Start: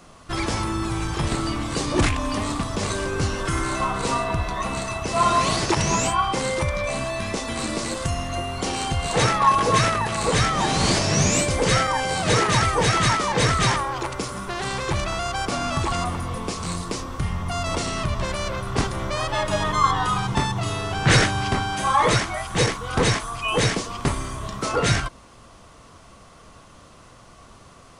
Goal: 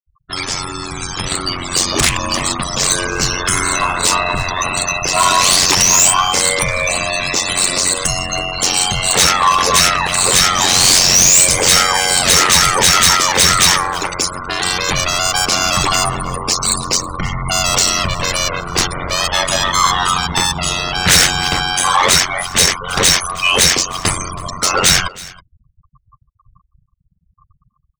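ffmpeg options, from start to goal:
ffmpeg -i in.wav -af "afftfilt=real='re*gte(hypot(re,im),0.0282)':imag='im*gte(hypot(re,im),0.0282)':win_size=1024:overlap=0.75,equalizer=frequency=220:width=5.4:gain=-9.5,dynaudnorm=framelen=350:gausssize=9:maxgain=10.5dB,crystalizer=i=9:c=0,aeval=exprs='val(0)*sin(2*PI*45*n/s)':channel_layout=same,asoftclip=type=tanh:threshold=-5dB,aecho=1:1:322:0.0944" out.wav

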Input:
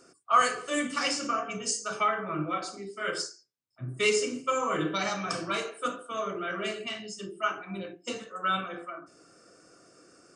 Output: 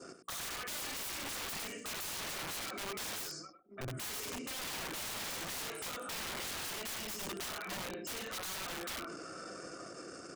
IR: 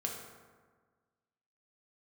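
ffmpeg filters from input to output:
-filter_complex "[0:a]acompressor=threshold=-40dB:ratio=4,asoftclip=type=tanh:threshold=-30.5dB,asettb=1/sr,asplit=3[link_01][link_02][link_03];[link_01]atrim=end=0.504[link_04];[link_02]atrim=start=0.5:end=2.99,asetpts=PTS-STARTPTS,afade=type=in:duration=0.004:curve=qsin,afade=type=out:start_time=2.486:duration=0.004:curve=qsin,highshelf=frequency=3400:width_type=q:width=3:gain=-13[link_05];[link_03]atrim=start=2.986[link_06];[link_04][link_05]acrossfade=duration=0.004:curve1=hsin:curve2=qsin[link_07];[link_07][link_06]acrossfade=duration=0.004:curve1=qsin:curve2=hsin,asplit=2[link_08][link_09];[link_09]adelay=922,lowpass=frequency=850:poles=1,volume=-18dB,asplit=2[link_10][link_11];[link_11]adelay=922,lowpass=frequency=850:poles=1,volume=0.3,asplit=2[link_12][link_13];[link_13]adelay=922,lowpass=frequency=850:poles=1,volume=0.3[link_14];[link_08][link_10][link_12][link_14]amix=inputs=4:normalize=0,anlmdn=0.0001,bandreject=frequency=60:width_type=h:width=6,bandreject=frequency=120:width_type=h:width=6,bandreject=frequency=180:width_type=h:width=6,bandreject=frequency=240:width_type=h:width=6,bandreject=frequency=300:width_type=h:width=6,bandreject=frequency=360:width_type=h:width=6,bandreject=frequency=420:width_type=h:width=6,bandreject=frequency=480:width_type=h:width=6,aecho=1:1:99:0.335,adynamicequalizer=threshold=0.00158:dfrequency=2100:dqfactor=0.74:tfrequency=2100:tqfactor=0.74:attack=5:release=100:ratio=0.375:range=2:mode=boostabove:tftype=bell,aeval=exprs='(mod(89.1*val(0)+1,2)-1)/89.1':channel_layout=same,alimiter=level_in=22dB:limit=-24dB:level=0:latency=1:release=15,volume=-22dB,volume=10dB"

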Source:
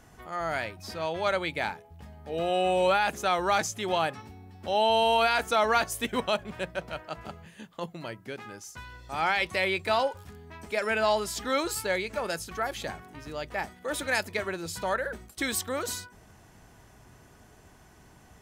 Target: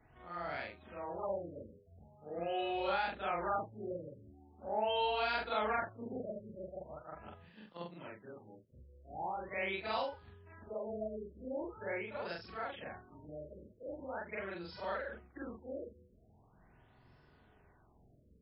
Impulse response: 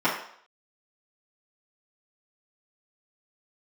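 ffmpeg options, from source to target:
-af "afftfilt=real='re':imag='-im':win_size=4096:overlap=0.75,afftfilt=real='re*lt(b*sr/1024,590*pow(5500/590,0.5+0.5*sin(2*PI*0.42*pts/sr)))':imag='im*lt(b*sr/1024,590*pow(5500/590,0.5+0.5*sin(2*PI*0.42*pts/sr)))':win_size=1024:overlap=0.75,volume=-5.5dB"

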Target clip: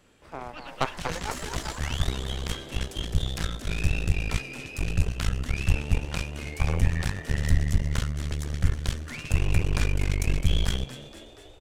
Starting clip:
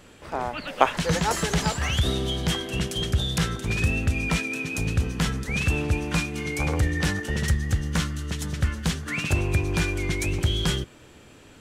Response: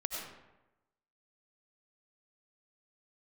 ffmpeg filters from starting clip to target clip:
-filter_complex "[0:a]asplit=9[link_01][link_02][link_03][link_04][link_05][link_06][link_07][link_08][link_09];[link_02]adelay=238,afreqshift=80,volume=-7.5dB[link_10];[link_03]adelay=476,afreqshift=160,volume=-11.7dB[link_11];[link_04]adelay=714,afreqshift=240,volume=-15.8dB[link_12];[link_05]adelay=952,afreqshift=320,volume=-20dB[link_13];[link_06]adelay=1190,afreqshift=400,volume=-24.1dB[link_14];[link_07]adelay=1428,afreqshift=480,volume=-28.3dB[link_15];[link_08]adelay=1666,afreqshift=560,volume=-32.4dB[link_16];[link_09]adelay=1904,afreqshift=640,volume=-36.6dB[link_17];[link_01][link_10][link_11][link_12][link_13][link_14][link_15][link_16][link_17]amix=inputs=9:normalize=0,acrossover=split=470[link_18][link_19];[link_18]asoftclip=type=tanh:threshold=-21dB[link_20];[link_20][link_19]amix=inputs=2:normalize=0,asubboost=boost=10.5:cutoff=65,aeval=exprs='0.841*(cos(1*acos(clip(val(0)/0.841,-1,1)))-cos(1*PI/2))+0.168*(cos(6*acos(clip(val(0)/0.841,-1,1)))-cos(6*PI/2))+0.0299*(cos(7*acos(clip(val(0)/0.841,-1,1)))-cos(7*PI/2))':channel_layout=same,volume=-8dB"

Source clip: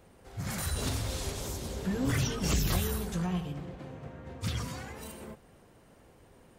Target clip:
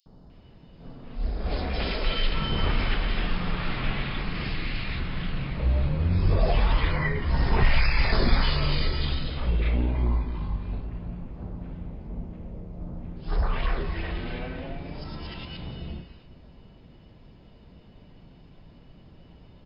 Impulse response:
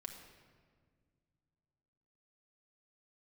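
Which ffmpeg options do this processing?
-filter_complex "[0:a]asetrate=14774,aresample=44100,acrossover=split=1400|4400[link_01][link_02][link_03];[link_01]adelay=60[link_04];[link_02]adelay=300[link_05];[link_04][link_05][link_03]amix=inputs=3:normalize=0,asplit=2[link_06][link_07];[1:a]atrim=start_sample=2205[link_08];[link_07][link_08]afir=irnorm=-1:irlink=0,volume=-6dB[link_09];[link_06][link_09]amix=inputs=2:normalize=0,volume=6dB"

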